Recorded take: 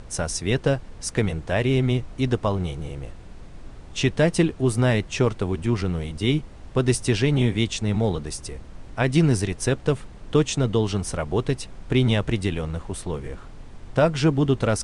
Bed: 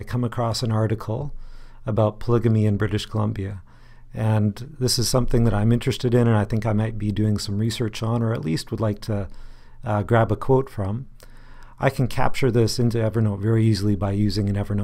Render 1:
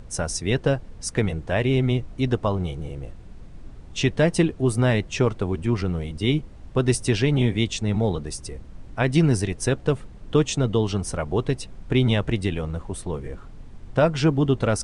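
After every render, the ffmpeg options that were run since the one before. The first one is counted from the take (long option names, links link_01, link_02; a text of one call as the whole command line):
ffmpeg -i in.wav -af "afftdn=noise_reduction=6:noise_floor=-42" out.wav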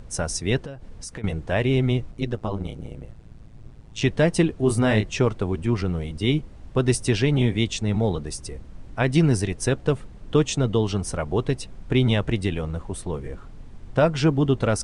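ffmpeg -i in.wav -filter_complex "[0:a]asettb=1/sr,asplit=3[link_01][link_02][link_03];[link_01]atrim=end=0.594[link_04];[link_02]atrim=start=0.59:end=1.24,asetpts=PTS-STARTPTS,afade=type=in:duration=0.004:curve=qsin,afade=type=out:start_time=0.646:duration=0.004:curve=qsin,acompressor=threshold=-32dB:ratio=8:attack=3.2:release=140:knee=1:detection=peak[link_05];[link_03]atrim=start=1.236[link_06];[link_04][link_05]acrossfade=duration=0.004:curve1=hsin:curve2=qsin[link_07];[link_07][link_06]acrossfade=duration=0.004:curve1=qsin:curve2=hsin,asettb=1/sr,asplit=3[link_08][link_09][link_10];[link_08]atrim=end=2.114[link_11];[link_09]atrim=start=2.11:end=4.02,asetpts=PTS-STARTPTS,afade=type=in:duration=0.004:curve=qsin,afade=type=out:start_time=1.906:duration=0.004:curve=qsin,tremolo=f=110:d=0.889[link_12];[link_10]atrim=start=4.016[link_13];[link_11][link_12]acrossfade=duration=0.004:curve1=hsin:curve2=qsin[link_14];[link_14][link_13]acrossfade=duration=0.004:curve1=qsin:curve2=hsin,asettb=1/sr,asplit=3[link_15][link_16][link_17];[link_15]atrim=end=4.604[link_18];[link_16]atrim=start=4.6:end=5.1,asetpts=PTS-STARTPTS,afade=type=in:duration=0.004:curve=qsin,afade=type=out:start_time=0.496:duration=0.004:curve=qsin,asplit=2[link_19][link_20];[link_20]adelay=28,volume=-5dB[link_21];[link_19][link_21]amix=inputs=2:normalize=0,atrim=end_sample=22050[link_22];[link_17]atrim=start=5.096[link_23];[link_18][link_22]acrossfade=duration=0.004:curve1=hsin:curve2=qsin[link_24];[link_24][link_23]acrossfade=duration=0.004:curve1=qsin:curve2=hsin" out.wav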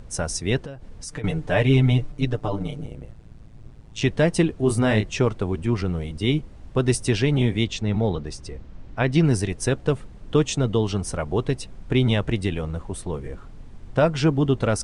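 ffmpeg -i in.wav -filter_complex "[0:a]asettb=1/sr,asplit=3[link_01][link_02][link_03];[link_01]atrim=end=1.074[link_04];[link_02]atrim=start=1.07:end=2.86,asetpts=PTS-STARTPTS,afade=type=in:duration=0.004:curve=qsin,afade=type=out:start_time=1.786:duration=0.004:curve=qsin,aecho=1:1:6.8:0.93,atrim=end_sample=78939[link_05];[link_03]atrim=start=2.856[link_06];[link_04][link_05]acrossfade=duration=0.004:curve1=hsin:curve2=qsin[link_07];[link_07][link_06]acrossfade=duration=0.004:curve1=qsin:curve2=hsin,asettb=1/sr,asplit=3[link_08][link_09][link_10];[link_08]atrim=end=7.654[link_11];[link_09]atrim=start=7.65:end=9.25,asetpts=PTS-STARTPTS,afade=type=in:duration=0.004:curve=qsin,afade=type=out:start_time=1.596:duration=0.004:curve=qsin,lowpass=5600[link_12];[link_10]atrim=start=9.246[link_13];[link_11][link_12]acrossfade=duration=0.004:curve1=hsin:curve2=qsin[link_14];[link_14][link_13]acrossfade=duration=0.004:curve1=qsin:curve2=hsin" out.wav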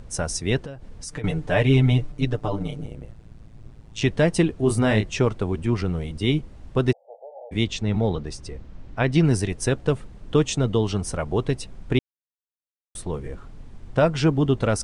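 ffmpeg -i in.wav -filter_complex "[0:a]asplit=3[link_01][link_02][link_03];[link_01]afade=type=out:start_time=6.91:duration=0.02[link_04];[link_02]asuperpass=centerf=650:order=12:qfactor=1.9,afade=type=in:start_time=6.91:duration=0.02,afade=type=out:start_time=7.51:duration=0.02[link_05];[link_03]afade=type=in:start_time=7.51:duration=0.02[link_06];[link_04][link_05][link_06]amix=inputs=3:normalize=0,asplit=3[link_07][link_08][link_09];[link_07]atrim=end=11.99,asetpts=PTS-STARTPTS,afade=type=out:start_time=11.986:duration=0.004:curve=hsin[link_10];[link_08]atrim=start=11.99:end=12.95,asetpts=PTS-STARTPTS,volume=0[link_11];[link_09]atrim=start=12.95,asetpts=PTS-STARTPTS,afade=type=in:duration=0.004:curve=hsin[link_12];[link_10][link_11][link_12]concat=n=3:v=0:a=1" out.wav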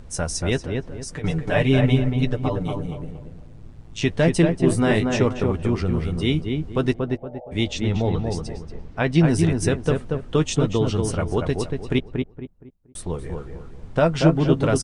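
ffmpeg -i in.wav -filter_complex "[0:a]asplit=2[link_01][link_02];[link_02]adelay=12,volume=-10.5dB[link_03];[link_01][link_03]amix=inputs=2:normalize=0,asplit=2[link_04][link_05];[link_05]adelay=234,lowpass=frequency=1600:poles=1,volume=-3.5dB,asplit=2[link_06][link_07];[link_07]adelay=234,lowpass=frequency=1600:poles=1,volume=0.33,asplit=2[link_08][link_09];[link_09]adelay=234,lowpass=frequency=1600:poles=1,volume=0.33,asplit=2[link_10][link_11];[link_11]adelay=234,lowpass=frequency=1600:poles=1,volume=0.33[link_12];[link_06][link_08][link_10][link_12]amix=inputs=4:normalize=0[link_13];[link_04][link_13]amix=inputs=2:normalize=0" out.wav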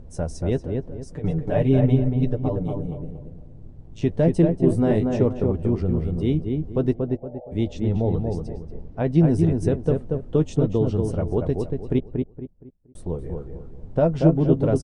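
ffmpeg -i in.wav -af "firequalizer=gain_entry='entry(560,0);entry(1200,-12);entry(2300,-15)':delay=0.05:min_phase=1" out.wav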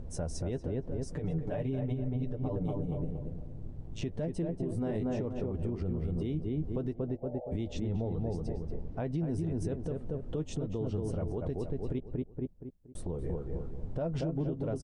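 ffmpeg -i in.wav -af "acompressor=threshold=-21dB:ratio=6,alimiter=level_in=1.5dB:limit=-24dB:level=0:latency=1:release=173,volume=-1.5dB" out.wav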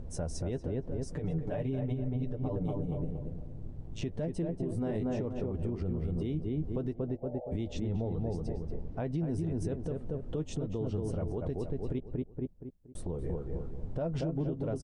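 ffmpeg -i in.wav -af anull out.wav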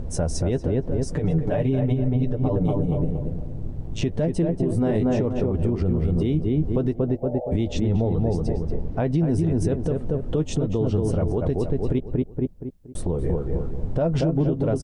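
ffmpeg -i in.wav -af "volume=11.5dB" out.wav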